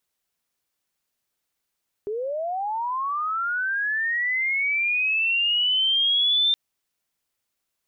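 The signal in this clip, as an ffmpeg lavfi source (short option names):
-f lavfi -i "aevalsrc='pow(10,(-25.5+8.5*t/4.47)/20)*sin(2*PI*(400*t+3200*t*t/(2*4.47)))':d=4.47:s=44100"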